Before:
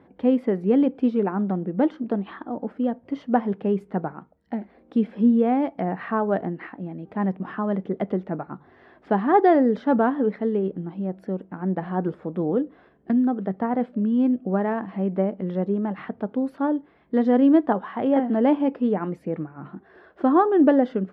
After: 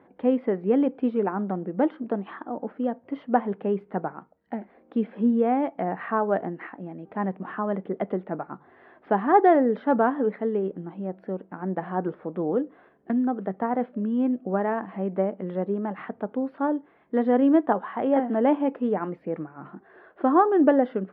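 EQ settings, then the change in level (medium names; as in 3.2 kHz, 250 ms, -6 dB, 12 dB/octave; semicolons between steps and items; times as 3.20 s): high-pass 110 Hz; distance through air 410 m; peaking EQ 140 Hz -8.5 dB 2.9 oct; +3.5 dB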